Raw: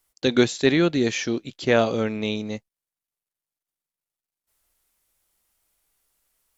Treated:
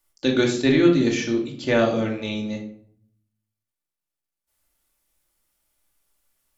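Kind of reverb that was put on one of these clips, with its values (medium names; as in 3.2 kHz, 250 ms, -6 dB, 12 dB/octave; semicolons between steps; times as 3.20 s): simulated room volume 980 m³, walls furnished, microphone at 2.5 m; trim -3.5 dB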